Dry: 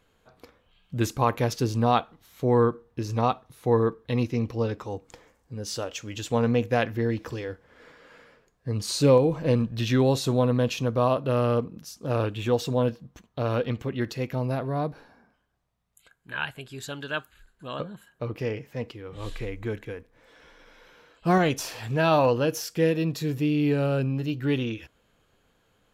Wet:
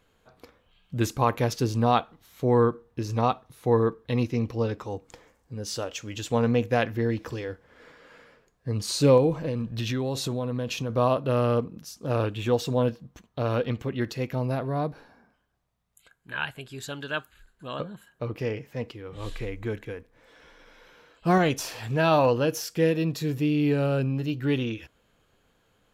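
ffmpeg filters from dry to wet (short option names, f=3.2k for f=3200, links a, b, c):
-filter_complex "[0:a]asplit=3[a][b][c];[a]afade=t=out:st=9.33:d=0.02[d];[b]acompressor=threshold=-25dB:ratio=6:attack=3.2:release=140:knee=1:detection=peak,afade=t=in:st=9.33:d=0.02,afade=t=out:st=10.89:d=0.02[e];[c]afade=t=in:st=10.89:d=0.02[f];[d][e][f]amix=inputs=3:normalize=0"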